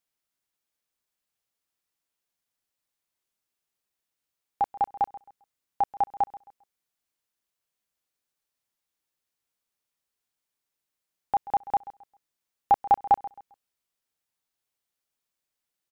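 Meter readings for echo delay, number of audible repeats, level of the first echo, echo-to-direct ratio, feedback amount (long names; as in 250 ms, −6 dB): 133 ms, 2, −17.5 dB, −17.0 dB, 28%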